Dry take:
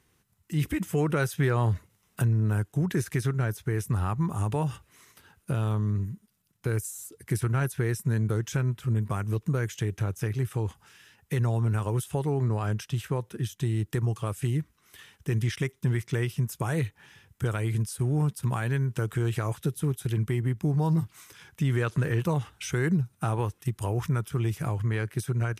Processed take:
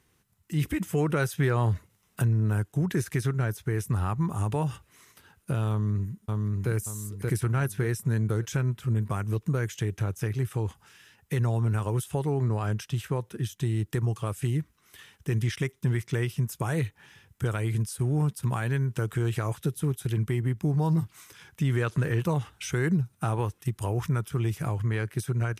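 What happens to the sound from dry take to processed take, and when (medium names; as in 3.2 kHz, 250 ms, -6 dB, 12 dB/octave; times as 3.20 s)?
5.70–6.71 s: echo throw 580 ms, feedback 35%, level -1.5 dB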